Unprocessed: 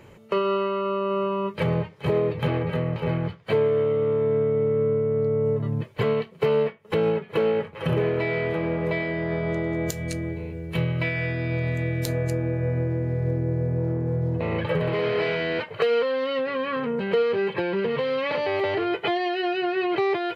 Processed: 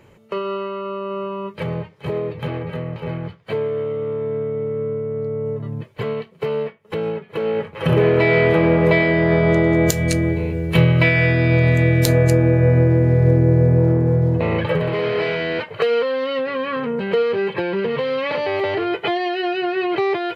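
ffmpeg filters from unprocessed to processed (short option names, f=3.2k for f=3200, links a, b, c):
-af "volume=11dB,afade=t=in:st=7.39:d=0.99:silence=0.237137,afade=t=out:st=13.69:d=1.19:silence=0.421697"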